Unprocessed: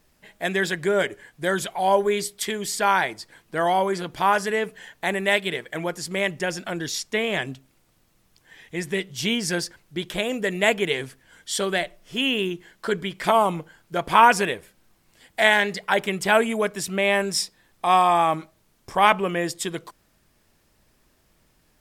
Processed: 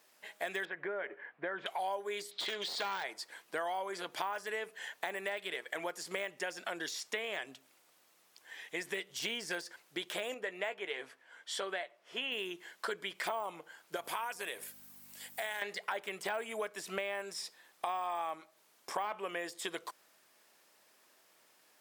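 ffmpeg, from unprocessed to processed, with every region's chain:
-filter_complex "[0:a]asettb=1/sr,asplit=3[a][b][c];[a]atrim=end=0.654[d];[b]atrim=start=0.65:end=1.66,asetpts=PTS-STARTPTS,afade=t=in:d=0.004:c=qsin,afade=t=out:st=1.006:d=0.004:c=qsin,lowpass=f=2.2k:w=0.5412,lowpass=f=2.2k:w=1.3066,acompressor=threshold=-26dB:ratio=2.5:attack=3.2:release=140:knee=1:detection=peak[e];[c]atrim=start=1.656[f];[d][e]acrossfade=d=0.004:c1=hsin:c2=qsin[g];[g][f]acrossfade=d=0.004:c1=qsin:c2=hsin,asettb=1/sr,asplit=3[h][i][j];[h]atrim=end=2.314[k];[i]atrim=start=2.31:end=3.04,asetpts=PTS-STARTPTS,afade=t=in:d=0.004:c=qsin,afade=t=out:st=0.726:d=0.004:c=qsin,lowpass=f=4k:t=q:w=5,aeval=exprs='clip(val(0),-1,0.0447)':c=same[l];[j]atrim=start=3.036[m];[k][l]acrossfade=d=0.004:c1=hsin:c2=qsin[n];[n][m]acrossfade=d=0.004:c1=qsin:c2=hsin,asettb=1/sr,asplit=3[o][p][q];[o]atrim=end=10.344[r];[p]atrim=start=10.34:end=12.32,asetpts=PTS-STARTPTS,afade=t=in:d=0.004:c=qsin,afade=t=out:st=1.976:d=0.004:c=qsin,lowpass=f=1.5k:p=1,equalizer=f=110:w=0.37:g=-9,asplit=2[s][t];[t]adelay=16,volume=-12dB[u];[s][u]amix=inputs=2:normalize=0,atrim=end_sample=87318[v];[q]atrim=start=12.316[w];[r][v]acrossfade=d=0.004:c1=hsin:c2=qsin[x];[x][w]acrossfade=d=0.004:c1=qsin:c2=hsin,asettb=1/sr,asplit=3[y][z][aa];[y]atrim=end=13.964[ab];[z]atrim=start=13.96:end=15.62,asetpts=PTS-STARTPTS,afade=t=in:d=0.004:c=qsin,afade=t=out:st=1.656:d=0.004:c=qsin,aemphasis=mode=production:type=50fm,acompressor=threshold=-36dB:ratio=2:attack=3.2:release=140:knee=1:detection=peak,aeval=exprs='val(0)+0.00794*(sin(2*PI*50*n/s)+sin(2*PI*2*50*n/s)/2+sin(2*PI*3*50*n/s)/3+sin(2*PI*4*50*n/s)/4+sin(2*PI*5*50*n/s)/5)':c=same[ac];[aa]atrim=start=15.616[ad];[ab][ac]acrossfade=d=0.004:c1=hsin:c2=qsin[ae];[ae][ad]acrossfade=d=0.004:c1=qsin:c2=hsin,deesser=0.75,highpass=520,acompressor=threshold=-35dB:ratio=6"

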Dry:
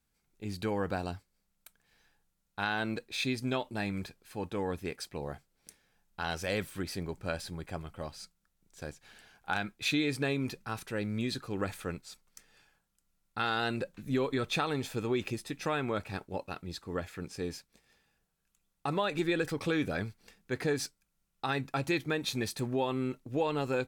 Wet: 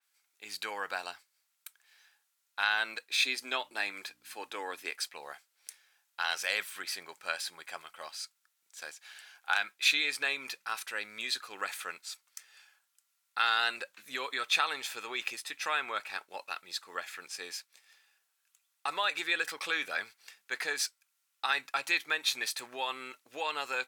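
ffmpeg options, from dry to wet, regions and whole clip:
-filter_complex "[0:a]asettb=1/sr,asplit=3[a][b][c];[a]atrim=end=3.104[d];[b]atrim=start=3.1:end=4.91,asetpts=PTS-STARTPTS,afade=t=in:d=0.004:c=qsin,afade=t=out:st=1.806:d=0.004:c=qsin,highpass=f=280:t=q:w=1.9,aeval=exprs='val(0)+0.00631*(sin(2*PI*60*n/s)+sin(2*PI*2*60*n/s)/2+sin(2*PI*3*60*n/s)/3+sin(2*PI*4*60*n/s)/4+sin(2*PI*5*60*n/s)/5)':c=same[e];[c]atrim=start=4.906[f];[d][e]acrossfade=d=0.004:c1=hsin:c2=qsin[g];[g][f]acrossfade=d=0.004:c1=qsin:c2=hsin,highpass=1.3k,adynamicequalizer=threshold=0.00282:dfrequency=3800:dqfactor=0.7:tfrequency=3800:tqfactor=0.7:attack=5:release=100:ratio=0.375:range=1.5:mode=cutabove:tftype=highshelf,volume=7dB"

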